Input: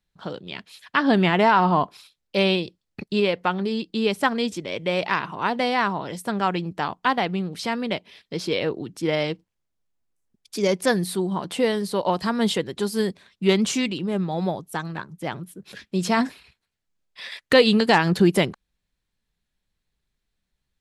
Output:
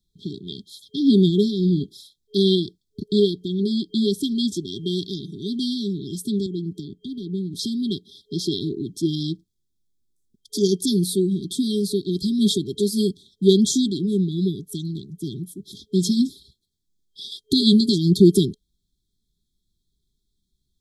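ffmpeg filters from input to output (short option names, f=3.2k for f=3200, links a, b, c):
-filter_complex "[0:a]asettb=1/sr,asplit=3[a][b][c];[a]atrim=end=6.464[d];[b]atrim=start=6.46:end=7.54,asetpts=PTS-STARTPTS,afade=t=in:d=0.004:c=qsin,afade=t=out:st=1.076:d=0.004:c=qsin,acrossover=split=110|1000[e][f][g];[e]acompressor=threshold=-56dB:ratio=4[h];[f]acompressor=threshold=-28dB:ratio=4[i];[g]acompressor=threshold=-40dB:ratio=4[j];[h][i][j]amix=inputs=3:normalize=0[k];[c]atrim=start=7.536[l];[d][k]acrossfade=d=0.004:c1=hsin:c2=qsin[m];[m][l]acrossfade=d=0.004:c1=qsin:c2=hsin,afftfilt=real='re*(1-between(b*sr/4096,420,3200))':imag='im*(1-between(b*sr/4096,420,3200))':win_size=4096:overlap=0.75,volume=4.5dB"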